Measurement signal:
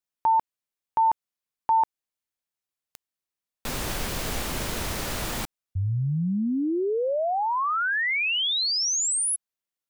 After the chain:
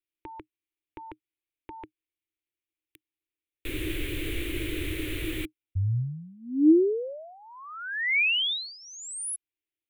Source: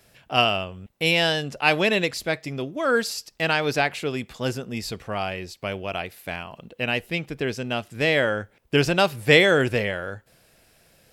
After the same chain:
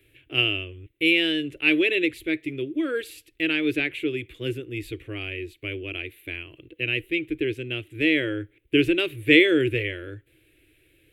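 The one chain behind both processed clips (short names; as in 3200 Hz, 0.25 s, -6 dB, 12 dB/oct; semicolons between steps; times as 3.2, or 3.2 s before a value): EQ curve 120 Hz 0 dB, 210 Hz -26 dB, 310 Hz +11 dB, 800 Hz -26 dB, 1400 Hz -13 dB, 2300 Hz +3 dB, 3600 Hz -3 dB, 5100 Hz -24 dB, 10000 Hz -7 dB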